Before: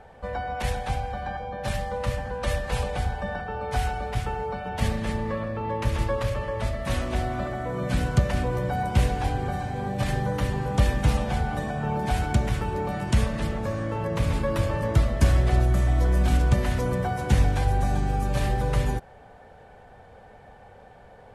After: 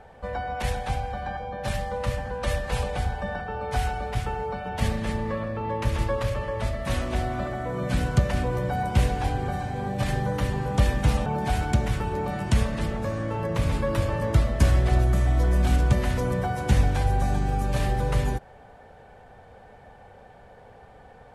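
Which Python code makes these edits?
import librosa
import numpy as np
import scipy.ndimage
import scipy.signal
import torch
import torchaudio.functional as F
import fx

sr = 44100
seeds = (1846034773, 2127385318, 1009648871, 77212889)

y = fx.edit(x, sr, fx.cut(start_s=11.26, length_s=0.61), tone=tone)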